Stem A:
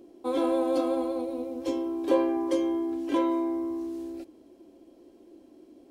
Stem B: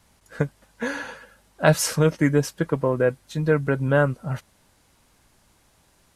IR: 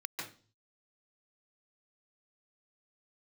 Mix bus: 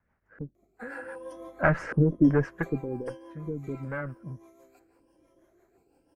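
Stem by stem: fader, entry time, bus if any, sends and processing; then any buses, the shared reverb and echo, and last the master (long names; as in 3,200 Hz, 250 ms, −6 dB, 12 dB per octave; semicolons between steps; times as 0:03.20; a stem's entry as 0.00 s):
−5.0 dB, 0.55 s, muted 0:01.62–0:02.24, send −14.5 dB, echo send −23.5 dB, rippled gain that drifts along the octave scale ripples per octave 1.2, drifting +1 Hz, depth 18 dB; high-pass filter 630 Hz 12 dB per octave; automatic ducking −9 dB, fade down 0.80 s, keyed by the second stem
0:00.96 −12.5 dB → 0:01.45 0 dB → 0:02.46 0 dB → 0:03.13 −11 dB, 0.00 s, no send, no echo send, asymmetric clip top −22 dBFS; auto-filter low-pass square 1.3 Hz 330–1,700 Hz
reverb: on, RT60 0.40 s, pre-delay 139 ms
echo: repeating echo 766 ms, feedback 39%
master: parametric band 3,700 Hz −12.5 dB 0.73 octaves; rotating-speaker cabinet horn 6 Hz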